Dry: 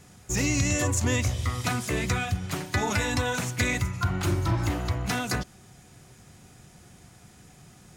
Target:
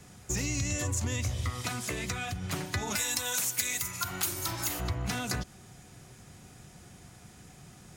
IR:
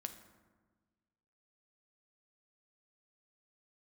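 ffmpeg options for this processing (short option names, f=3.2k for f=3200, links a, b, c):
-filter_complex "[0:a]acrossover=split=130|3000[a][b][c];[b]acompressor=threshold=-30dB:ratio=6[d];[a][d][c]amix=inputs=3:normalize=0,asplit=3[e][f][g];[e]afade=t=out:st=2.95:d=0.02[h];[f]aemphasis=mode=production:type=riaa,afade=t=in:st=2.95:d=0.02,afade=t=out:st=4.79:d=0.02[i];[g]afade=t=in:st=4.79:d=0.02[j];[h][i][j]amix=inputs=3:normalize=0,acompressor=threshold=-29dB:ratio=3,asettb=1/sr,asplit=3[k][l][m];[k]atrim=end=1.504[n];[l]atrim=start=1.5:end=2.36,asetpts=PTS-STARTPTS,afade=t=in:d=0.004:c=qsin,afade=t=out:st=0.856:d=0.004:c=qsin,lowshelf=f=190:g=-6.5[o];[m]atrim=start=2.356[p];[n][o]acrossfade=d=0.004:c1=hsin:c2=qsin[q];[q][p]acrossfade=d=0.004:c1=qsin:c2=hsin"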